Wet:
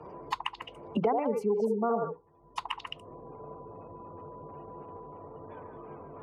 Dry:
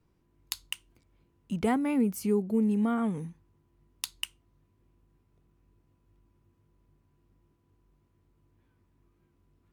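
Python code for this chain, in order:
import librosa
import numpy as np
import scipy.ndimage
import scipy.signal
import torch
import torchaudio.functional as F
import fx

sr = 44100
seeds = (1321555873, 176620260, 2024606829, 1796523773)

p1 = fx.spec_gate(x, sr, threshold_db=-30, keep='strong')
p2 = scipy.signal.sosfilt(scipy.signal.butter(4, 40.0, 'highpass', fs=sr, output='sos'), p1)
p3 = fx.band_shelf(p2, sr, hz=690.0, db=13.5, octaves=1.7)
p4 = fx.hum_notches(p3, sr, base_hz=60, count=8)
p5 = p4 + fx.echo_stepped(p4, sr, ms=112, hz=580.0, octaves=1.4, feedback_pct=70, wet_db=-1, dry=0)
p6 = fx.stretch_vocoder(p5, sr, factor=0.64)
p7 = fx.air_absorb(p6, sr, metres=61.0)
p8 = fx.band_squash(p7, sr, depth_pct=100)
y = p8 * 10.0 ** (-6.5 / 20.0)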